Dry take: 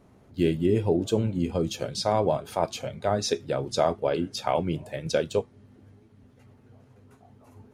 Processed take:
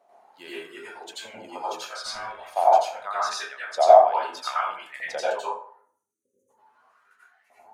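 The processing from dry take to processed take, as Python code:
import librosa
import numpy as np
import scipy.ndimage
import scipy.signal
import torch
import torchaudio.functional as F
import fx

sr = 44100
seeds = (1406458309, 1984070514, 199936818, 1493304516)

y = fx.filter_lfo_highpass(x, sr, shape='saw_up', hz=0.8, low_hz=670.0, high_hz=2100.0, q=5.9)
y = fx.tube_stage(y, sr, drive_db=28.0, bias=0.35, at=(2.05, 2.53))
y = fx.dereverb_blind(y, sr, rt60_s=0.74)
y = fx.spec_erase(y, sr, start_s=5.71, length_s=0.79, low_hz=580.0, high_hz=5800.0)
y = fx.rev_plate(y, sr, seeds[0], rt60_s=0.56, hf_ratio=0.55, predelay_ms=75, drr_db=-8.5)
y = y * 10.0 ** (-8.5 / 20.0)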